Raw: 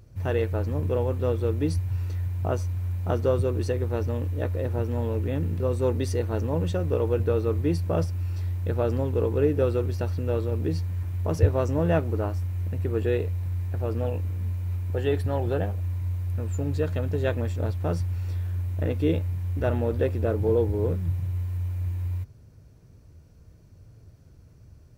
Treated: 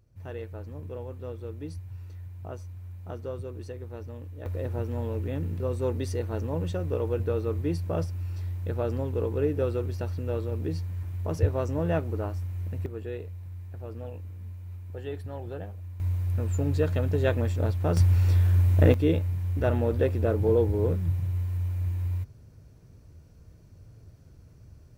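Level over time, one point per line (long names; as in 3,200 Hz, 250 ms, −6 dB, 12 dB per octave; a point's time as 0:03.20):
−12.5 dB
from 0:04.46 −4 dB
from 0:12.86 −11 dB
from 0:16.00 +1 dB
from 0:17.97 +8 dB
from 0:18.94 0 dB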